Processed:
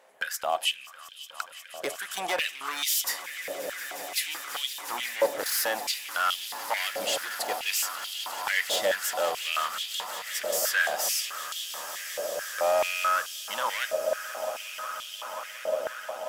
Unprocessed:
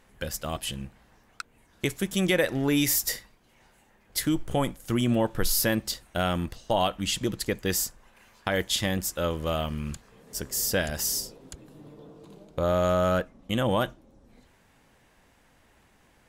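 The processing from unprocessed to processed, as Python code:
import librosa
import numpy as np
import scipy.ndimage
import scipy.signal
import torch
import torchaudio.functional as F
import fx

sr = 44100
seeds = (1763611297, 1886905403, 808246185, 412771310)

y = np.clip(10.0 ** (24.0 / 20.0) * x, -1.0, 1.0) / 10.0 ** (24.0 / 20.0)
y = fx.echo_swell(y, sr, ms=179, loudest=8, wet_db=-16)
y = fx.filter_held_highpass(y, sr, hz=4.6, low_hz=590.0, high_hz=3200.0)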